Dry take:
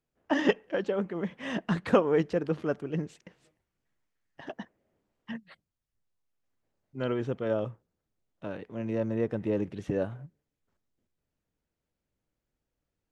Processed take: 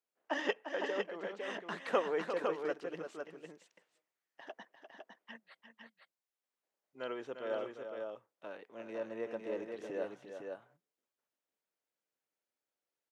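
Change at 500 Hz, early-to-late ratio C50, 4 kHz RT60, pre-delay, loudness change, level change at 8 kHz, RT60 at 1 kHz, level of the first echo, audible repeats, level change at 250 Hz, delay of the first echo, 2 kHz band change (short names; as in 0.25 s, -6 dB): -7.0 dB, none, none, none, -9.0 dB, n/a, none, -9.0 dB, 2, -14.5 dB, 0.349 s, -4.0 dB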